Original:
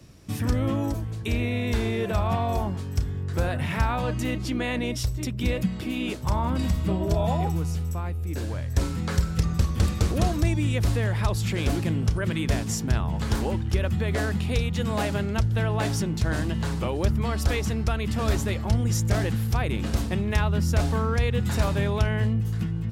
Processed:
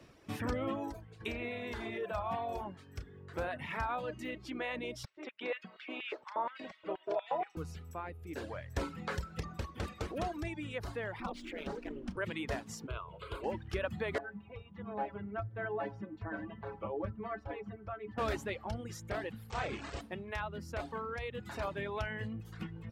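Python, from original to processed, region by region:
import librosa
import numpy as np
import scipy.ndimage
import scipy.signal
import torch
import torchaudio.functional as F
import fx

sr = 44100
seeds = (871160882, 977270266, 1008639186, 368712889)

y = fx.chain(x, sr, fx.hum_notches(base_hz=50, count=9),
    fx.env_flatten(amount_pct=50), at=(1.2, 1.98))
y = fx.chain(y, sr, fx.lowpass(hz=3600.0, slope=12),
    fx.filter_lfo_highpass(shape='square', hz=4.2, low_hz=430.0, high_hz=1900.0, q=1.2), at=(5.05, 7.57))
y = fx.chain(y, sr, fx.high_shelf(hz=9800.0, db=8.0),
    fx.ring_mod(carrier_hz=130.0),
    fx.resample_linear(factor=3), at=(11.2, 12.17))
y = fx.chain(y, sr, fx.lowpass(hz=11000.0, slope=12),
    fx.fixed_phaser(hz=1200.0, stages=8), at=(12.87, 13.44))
y = fx.chain(y, sr, fx.lowpass(hz=1500.0, slope=12),
    fx.stiff_resonator(f0_hz=100.0, decay_s=0.2, stiffness=0.008), at=(14.18, 18.18))
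y = fx.chain(y, sr, fx.delta_mod(bps=64000, step_db=-24.5),
    fx.brickwall_lowpass(high_hz=8600.0),
    fx.doubler(ms=29.0, db=-3), at=(19.5, 20.01))
y = fx.dereverb_blind(y, sr, rt60_s=1.1)
y = fx.bass_treble(y, sr, bass_db=-13, treble_db=-13)
y = fx.rider(y, sr, range_db=10, speed_s=2.0)
y = F.gain(torch.from_numpy(y), -6.0).numpy()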